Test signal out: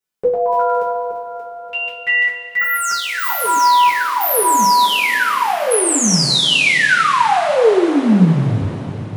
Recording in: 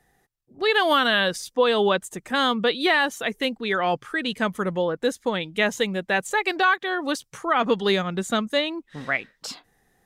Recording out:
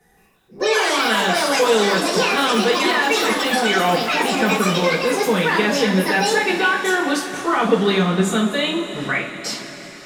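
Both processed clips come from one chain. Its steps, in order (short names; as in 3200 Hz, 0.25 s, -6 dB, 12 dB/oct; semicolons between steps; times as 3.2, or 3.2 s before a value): echoes that change speed 0.17 s, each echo +6 st, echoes 3; limiter -17.5 dBFS; two-slope reverb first 0.33 s, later 4.9 s, from -18 dB, DRR -8 dB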